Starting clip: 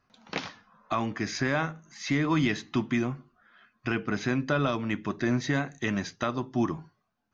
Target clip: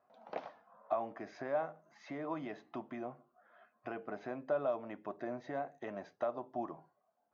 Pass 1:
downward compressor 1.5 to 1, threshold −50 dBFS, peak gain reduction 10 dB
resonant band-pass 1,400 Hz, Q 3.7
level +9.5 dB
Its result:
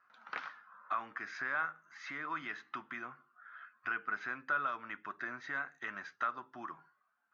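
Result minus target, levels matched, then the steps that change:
500 Hz band −15.5 dB
change: resonant band-pass 650 Hz, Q 3.7

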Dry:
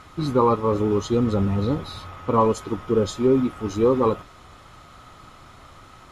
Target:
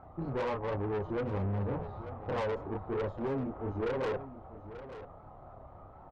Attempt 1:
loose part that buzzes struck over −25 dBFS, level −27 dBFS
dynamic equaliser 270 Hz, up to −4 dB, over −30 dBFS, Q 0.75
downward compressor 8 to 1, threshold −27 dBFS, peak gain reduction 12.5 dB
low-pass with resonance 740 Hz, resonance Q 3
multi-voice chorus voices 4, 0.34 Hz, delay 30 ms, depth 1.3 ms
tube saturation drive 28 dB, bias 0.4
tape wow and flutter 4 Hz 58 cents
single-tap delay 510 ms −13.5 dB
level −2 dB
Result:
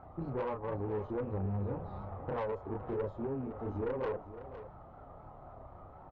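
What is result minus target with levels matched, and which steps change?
echo 377 ms early; downward compressor: peak gain reduction +6.5 dB
change: downward compressor 8 to 1, threshold −19.5 dBFS, peak gain reduction 5.5 dB
change: single-tap delay 887 ms −13.5 dB

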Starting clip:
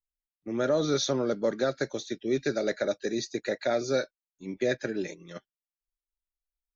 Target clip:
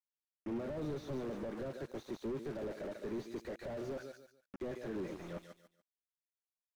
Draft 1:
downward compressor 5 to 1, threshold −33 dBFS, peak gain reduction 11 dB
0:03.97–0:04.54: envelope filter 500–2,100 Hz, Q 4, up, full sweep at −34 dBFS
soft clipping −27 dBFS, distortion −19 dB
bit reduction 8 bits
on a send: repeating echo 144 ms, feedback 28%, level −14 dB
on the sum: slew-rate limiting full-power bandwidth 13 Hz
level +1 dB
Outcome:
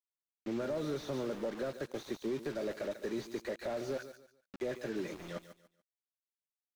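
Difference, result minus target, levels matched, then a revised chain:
slew-rate limiting: distortion −11 dB; soft clipping: distortion +11 dB
downward compressor 5 to 1, threshold −33 dBFS, peak gain reduction 11 dB
0:03.97–0:04.54: envelope filter 500–2,100 Hz, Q 4, up, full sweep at −34 dBFS
soft clipping −20.5 dBFS, distortion −30 dB
bit reduction 8 bits
on a send: repeating echo 144 ms, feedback 28%, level −14 dB
on the sum: slew-rate limiting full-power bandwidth 5 Hz
level +1 dB

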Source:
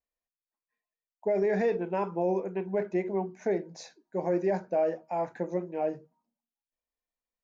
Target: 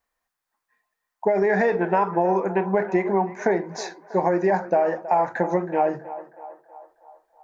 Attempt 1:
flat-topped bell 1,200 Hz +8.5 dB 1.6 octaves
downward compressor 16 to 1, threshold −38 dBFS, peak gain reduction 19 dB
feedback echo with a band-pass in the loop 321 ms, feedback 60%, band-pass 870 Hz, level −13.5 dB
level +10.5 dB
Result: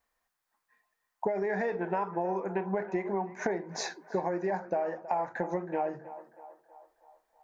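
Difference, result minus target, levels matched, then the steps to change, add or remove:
downward compressor: peak gain reduction +11 dB
change: downward compressor 16 to 1, threshold −26.5 dBFS, peak gain reduction 8 dB

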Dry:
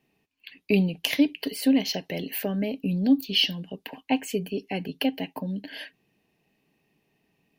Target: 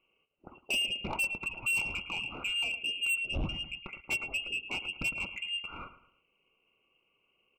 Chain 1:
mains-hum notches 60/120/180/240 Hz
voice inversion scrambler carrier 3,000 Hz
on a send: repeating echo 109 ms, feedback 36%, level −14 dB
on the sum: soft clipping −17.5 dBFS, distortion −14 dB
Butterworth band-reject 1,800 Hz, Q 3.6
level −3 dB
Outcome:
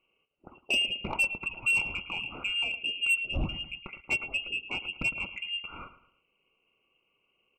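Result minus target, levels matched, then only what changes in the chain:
soft clipping: distortion −6 dB
change: soft clipping −24 dBFS, distortion −7 dB

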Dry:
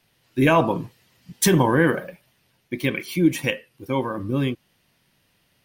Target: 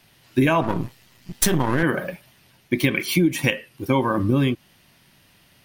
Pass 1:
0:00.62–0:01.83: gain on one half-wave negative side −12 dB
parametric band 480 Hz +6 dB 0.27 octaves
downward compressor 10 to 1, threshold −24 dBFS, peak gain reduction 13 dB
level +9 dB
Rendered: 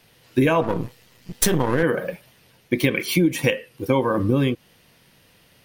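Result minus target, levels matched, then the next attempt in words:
500 Hz band +2.5 dB
0:00.62–0:01.83: gain on one half-wave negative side −12 dB
parametric band 480 Hz −5.5 dB 0.27 octaves
downward compressor 10 to 1, threshold −24 dBFS, peak gain reduction 12 dB
level +9 dB

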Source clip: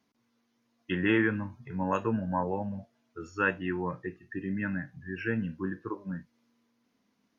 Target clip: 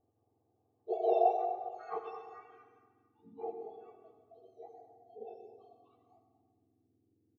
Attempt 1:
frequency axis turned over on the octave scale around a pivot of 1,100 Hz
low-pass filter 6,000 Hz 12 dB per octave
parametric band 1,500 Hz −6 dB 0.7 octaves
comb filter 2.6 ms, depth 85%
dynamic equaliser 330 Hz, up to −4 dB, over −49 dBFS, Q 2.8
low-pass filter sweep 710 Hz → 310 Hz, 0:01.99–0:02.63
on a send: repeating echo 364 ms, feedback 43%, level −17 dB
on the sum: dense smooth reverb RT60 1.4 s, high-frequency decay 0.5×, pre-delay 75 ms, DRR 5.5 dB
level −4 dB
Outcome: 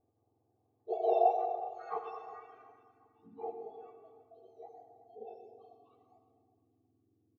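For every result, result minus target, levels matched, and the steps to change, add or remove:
echo 136 ms late; 250 Hz band −3.0 dB
change: repeating echo 228 ms, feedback 43%, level −17 dB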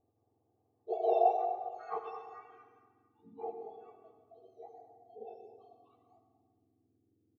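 250 Hz band −3.0 dB
change: dynamic equaliser 970 Hz, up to −4 dB, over −49 dBFS, Q 2.8

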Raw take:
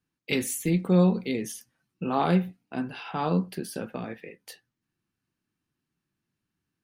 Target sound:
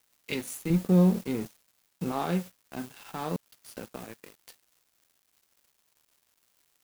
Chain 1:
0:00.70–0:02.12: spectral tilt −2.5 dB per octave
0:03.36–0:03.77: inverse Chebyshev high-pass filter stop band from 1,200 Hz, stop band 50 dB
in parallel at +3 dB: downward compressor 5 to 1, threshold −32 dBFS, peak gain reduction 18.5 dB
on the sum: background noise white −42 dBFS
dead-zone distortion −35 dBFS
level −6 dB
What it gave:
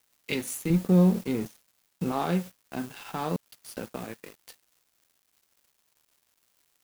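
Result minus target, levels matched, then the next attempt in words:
downward compressor: peak gain reduction −9 dB
0:00.70–0:02.12: spectral tilt −2.5 dB per octave
0:03.36–0:03.77: inverse Chebyshev high-pass filter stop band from 1,200 Hz, stop band 50 dB
in parallel at +3 dB: downward compressor 5 to 1, threshold −43 dBFS, peak gain reduction 27 dB
on the sum: background noise white −42 dBFS
dead-zone distortion −35 dBFS
level −6 dB

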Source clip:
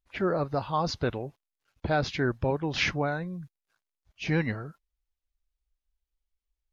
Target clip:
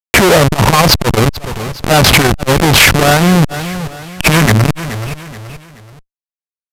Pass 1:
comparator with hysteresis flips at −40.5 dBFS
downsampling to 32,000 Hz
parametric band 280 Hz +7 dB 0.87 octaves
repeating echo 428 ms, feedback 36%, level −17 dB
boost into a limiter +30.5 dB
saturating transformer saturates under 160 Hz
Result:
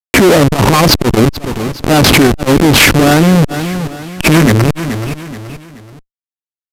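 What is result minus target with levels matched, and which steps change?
250 Hz band +4.0 dB
change: parametric band 280 Hz −4.5 dB 0.87 octaves

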